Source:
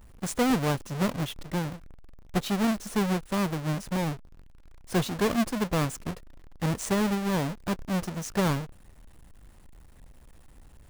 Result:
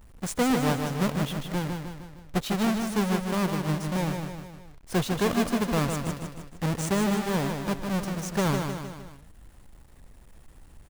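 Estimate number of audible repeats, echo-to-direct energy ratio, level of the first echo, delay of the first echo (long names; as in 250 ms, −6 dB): 4, −4.0 dB, −5.5 dB, 154 ms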